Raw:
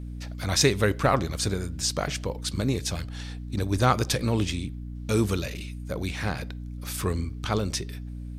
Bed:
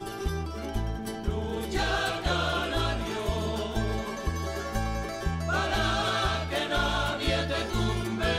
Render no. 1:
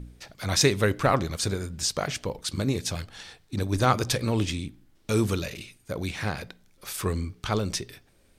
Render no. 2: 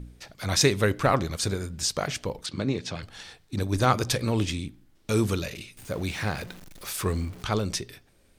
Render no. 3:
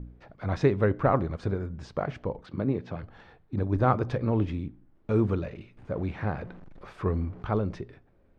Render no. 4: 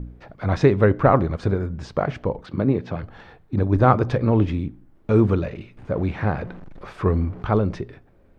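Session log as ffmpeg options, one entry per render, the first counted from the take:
-af "bandreject=f=60:t=h:w=4,bandreject=f=120:t=h:w=4,bandreject=f=180:t=h:w=4,bandreject=f=240:t=h:w=4,bandreject=f=300:t=h:w=4"
-filter_complex "[0:a]asettb=1/sr,asplit=3[a][b][c];[a]atrim=end=2.464[d];[b]atrim=start=2.46:end=3.03,asetpts=PTS-STARTPTS,afade=t=in:d=0.004:c=qsin,afade=t=out:st=0.566:d=0.004:c=qsin,highpass=120,lowpass=4.2k[e];[c]atrim=start=3.026[f];[d][e]acrossfade=d=0.004:c1=hsin:c2=qsin[g];[g][f]acrossfade=d=0.004:c1=qsin:c2=hsin,asettb=1/sr,asplit=3[h][i][j];[h]atrim=end=5.774[k];[i]atrim=start=5.77:end=7.43,asetpts=PTS-STARTPTS,afade=t=in:d=0.004:c=qsin,afade=t=out:st=1.656:d=0.004:c=qsin,aeval=exprs='val(0)+0.5*0.00891*sgn(val(0))':c=same[l];[j]atrim=start=7.426[m];[k][l]acrossfade=d=0.004:c1=hsin:c2=qsin[n];[n][m]acrossfade=d=0.004:c1=qsin:c2=hsin"
-af "lowpass=1.2k"
-af "volume=7.5dB,alimiter=limit=-3dB:level=0:latency=1"

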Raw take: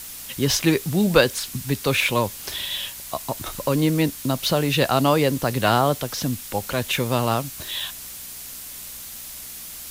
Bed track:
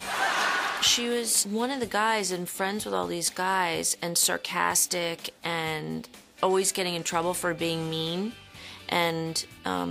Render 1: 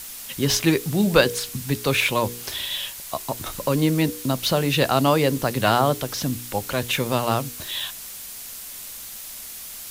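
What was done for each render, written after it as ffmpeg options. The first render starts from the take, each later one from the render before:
-af "bandreject=f=60:t=h:w=4,bandreject=f=120:t=h:w=4,bandreject=f=180:t=h:w=4,bandreject=f=240:t=h:w=4,bandreject=f=300:t=h:w=4,bandreject=f=360:t=h:w=4,bandreject=f=420:t=h:w=4,bandreject=f=480:t=h:w=4"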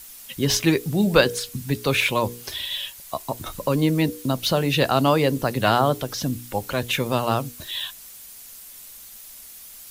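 -af "afftdn=nr=8:nf=-37"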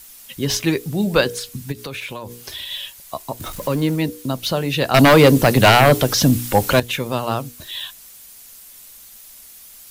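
-filter_complex "[0:a]asplit=3[a][b][c];[a]afade=t=out:st=1.71:d=0.02[d];[b]acompressor=threshold=-26dB:ratio=10:attack=3.2:release=140:knee=1:detection=peak,afade=t=in:st=1.71:d=0.02,afade=t=out:st=2.69:d=0.02[e];[c]afade=t=in:st=2.69:d=0.02[f];[d][e][f]amix=inputs=3:normalize=0,asettb=1/sr,asplit=3[g][h][i];[g]atrim=end=3.404[j];[h]atrim=start=3.4:end=3.96,asetpts=PTS-STARTPTS,afade=t=in:d=0.004:c=qsin,afade=t=out:st=0.556:d=0.004:c=qsin,aeval=exprs='val(0)+0.5*0.0224*sgn(val(0))':c=same[k];[i]atrim=start=3.956[l];[j][k]acrossfade=d=0.004:c1=hsin:c2=qsin[m];[m][l]acrossfade=d=0.004:c1=qsin:c2=hsin,asettb=1/sr,asplit=3[n][o][p];[n]atrim=end=4.944[q];[o]atrim=start=4.94:end=6.8,asetpts=PTS-STARTPTS,afade=t=in:d=0.004:c=qsin,afade=t=out:st=1.856:d=0.004:c=qsin,aeval=exprs='0.596*sin(PI/2*2.51*val(0)/0.596)':c=same[r];[p]atrim=start=6.796[s];[q][r]acrossfade=d=0.004:c1=hsin:c2=qsin[t];[t][s]acrossfade=d=0.004:c1=qsin:c2=hsin"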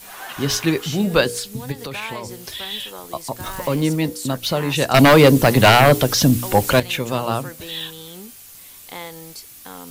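-filter_complex "[1:a]volume=-9dB[a];[0:a][a]amix=inputs=2:normalize=0"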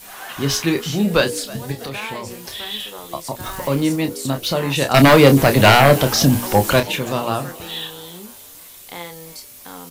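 -filter_complex "[0:a]asplit=2[a][b];[b]adelay=29,volume=-8dB[c];[a][c]amix=inputs=2:normalize=0,asplit=5[d][e][f][g][h];[e]adelay=324,afreqshift=92,volume=-20dB[i];[f]adelay=648,afreqshift=184,volume=-25.4dB[j];[g]adelay=972,afreqshift=276,volume=-30.7dB[k];[h]adelay=1296,afreqshift=368,volume=-36.1dB[l];[d][i][j][k][l]amix=inputs=5:normalize=0"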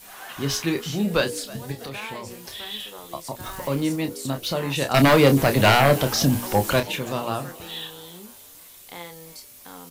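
-af "volume=-5.5dB"

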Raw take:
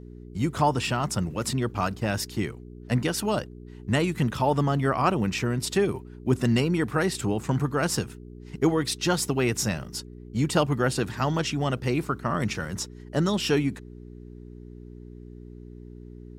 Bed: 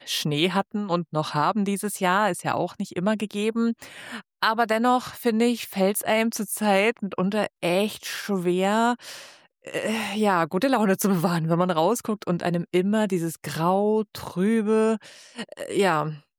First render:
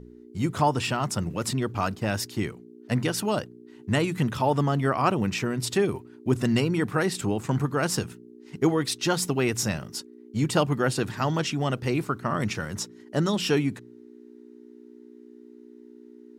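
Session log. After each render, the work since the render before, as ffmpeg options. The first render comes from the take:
-af "bandreject=f=60:t=h:w=4,bandreject=f=120:t=h:w=4,bandreject=f=180:t=h:w=4"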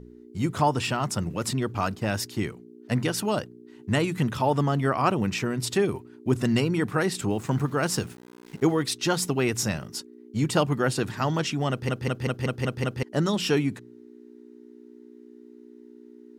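-filter_complex "[0:a]asettb=1/sr,asplit=3[a][b][c];[a]atrim=end=7.304[d];[b]atrim=start=7.3:end=8.82,asetpts=PTS-STARTPTS,afade=t=in:d=0.004:c=qsin,afade=t=out:st=1.516:d=0.004:c=qsin,aeval=exprs='val(0)*gte(abs(val(0)),0.00501)':c=same[e];[c]atrim=start=8.816[f];[d][e]acrossfade=d=0.004:c1=hsin:c2=qsin[g];[g][f]acrossfade=d=0.004:c1=qsin:c2=hsin,asplit=8[h][i][j][k][l][m][n][o];[h]atrim=end=11.892[p];[i]atrim=start=11.698:end=11.892[q];[j]atrim=start=11.698:end=11.892[r];[k]atrim=start=11.698:end=11.892[s];[l]atrim=start=11.698:end=11.892[t];[m]atrim=start=11.698:end=11.892[u];[n]atrim=start=11.698:end=11.892[v];[o]atrim=start=13.028[w];[p][q]acrossfade=d=0.004:c1=hsin:c2=hsin[x];[x][r]acrossfade=d=0.004:c1=hsin:c2=hsin[y];[y][s]acrossfade=d=0.004:c1=hsin:c2=hsin[z];[z][t]acrossfade=d=0.004:c1=hsin:c2=hsin[aa];[aa][u]acrossfade=d=0.004:c1=hsin:c2=hsin[ab];[ab][v]acrossfade=d=0.004:c1=hsin:c2=hsin[ac];[ac][w]acrossfade=d=0.004:c1=hsin:c2=hsin"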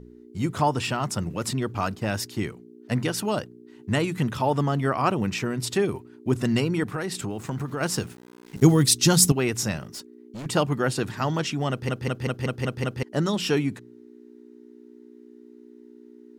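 -filter_complex "[0:a]asettb=1/sr,asplit=3[a][b][c];[a]atrim=end=6.834[d];[b]atrim=start=6.83:end=7.81,asetpts=PTS-STARTPTS,afade=t=in:d=0.004:c=qsin,afade=t=out:st=0.976:d=0.004:c=qsin,acompressor=threshold=-25dB:ratio=6:attack=3.2:release=140:knee=1:detection=peak[e];[c]atrim=start=7.806[f];[d][e]acrossfade=d=0.004:c1=hsin:c2=qsin[g];[g][f]acrossfade=d=0.004:c1=qsin:c2=hsin,asettb=1/sr,asplit=3[h][i][j];[h]atrim=end=8.564[k];[i]atrim=start=8.56:end=9.32,asetpts=PTS-STARTPTS,afade=t=in:d=0.004:c=qsin,afade=t=out:st=0.756:d=0.004:c=qsin,bass=f=250:g=14,treble=f=4k:g=13[l];[j]atrim=start=9.316[m];[k][l]acrossfade=d=0.004:c1=hsin:c2=qsin[n];[n][m]acrossfade=d=0.004:c1=qsin:c2=hsin,asettb=1/sr,asplit=3[o][p][q];[o]atrim=end=9.844[r];[p]atrim=start=9.84:end=10.46,asetpts=PTS-STARTPTS,afade=t=in:d=0.004:c=qsin,afade=t=out:st=0.616:d=0.004:c=qsin,volume=34dB,asoftclip=hard,volume=-34dB[s];[q]atrim=start=10.456[t];[r][s]acrossfade=d=0.004:c1=hsin:c2=qsin[u];[u][t]acrossfade=d=0.004:c1=qsin:c2=hsin"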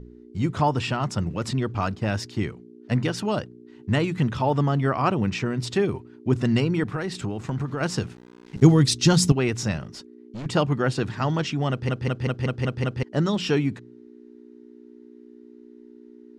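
-af "lowpass=5.7k,lowshelf=f=120:g=7"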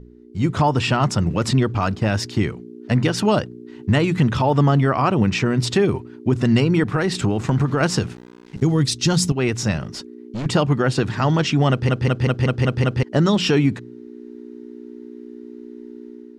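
-af "dynaudnorm=f=180:g=5:m=10dB,alimiter=limit=-8dB:level=0:latency=1:release=136"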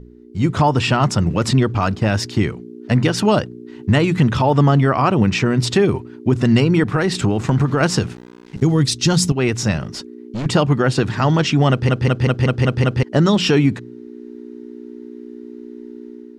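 -af "volume=2.5dB"

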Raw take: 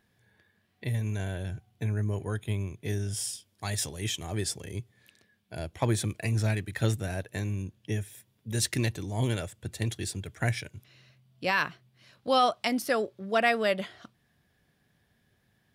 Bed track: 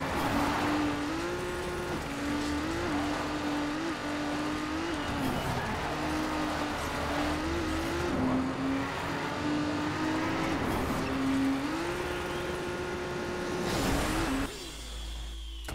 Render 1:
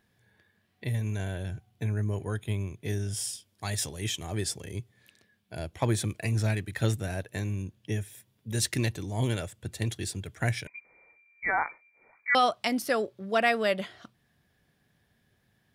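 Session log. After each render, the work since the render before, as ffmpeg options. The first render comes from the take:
-filter_complex "[0:a]asettb=1/sr,asplit=3[a][b][c];[a]atrim=end=10.674[d];[b]atrim=start=10.67:end=12.35,asetpts=PTS-STARTPTS,afade=t=in:d=0.004:c=qsin,afade=t=out:st=1.676:d=0.004:c=qsin,lowpass=f=2.1k:t=q:w=0.5098,lowpass=f=2.1k:t=q:w=0.6013,lowpass=f=2.1k:t=q:w=0.9,lowpass=f=2.1k:t=q:w=2.563,afreqshift=-2500[e];[c]atrim=start=12.346[f];[d][e]acrossfade=d=0.004:c1=hsin:c2=qsin[g];[g][f]acrossfade=d=0.004:c1=qsin:c2=hsin"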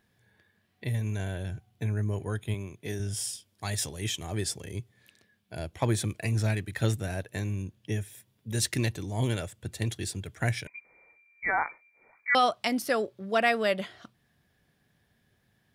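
-filter_complex "[0:a]asettb=1/sr,asplit=3[a][b][c];[a]atrim=end=2.544[d];[b]atrim=start=2.54:end=3,asetpts=PTS-STARTPTS,afade=t=in:d=0.004:c=qsin,afade=t=out:st=0.456:d=0.004:c=qsin,highpass=f=180:p=1[e];[c]atrim=start=2.996[f];[d][e]acrossfade=d=0.004:c1=hsin:c2=qsin[g];[g][f]acrossfade=d=0.004:c1=qsin:c2=hsin"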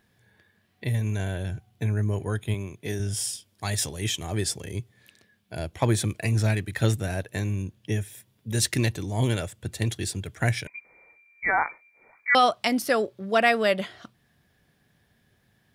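-af "volume=4dB"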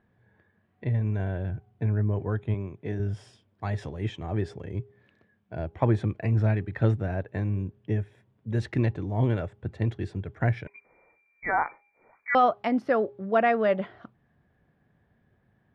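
-af "lowpass=1.4k,bandreject=f=409.1:t=h:w=4,bandreject=f=818.2:t=h:w=4"

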